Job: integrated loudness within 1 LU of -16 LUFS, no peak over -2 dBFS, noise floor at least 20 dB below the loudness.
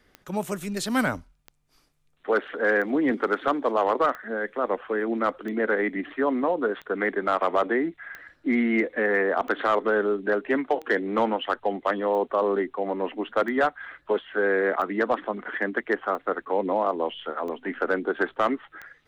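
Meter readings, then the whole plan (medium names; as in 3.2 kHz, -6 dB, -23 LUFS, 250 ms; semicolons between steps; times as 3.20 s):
clicks found 15; loudness -26.0 LUFS; peak level -12.5 dBFS; loudness target -16.0 LUFS
-> de-click; trim +10 dB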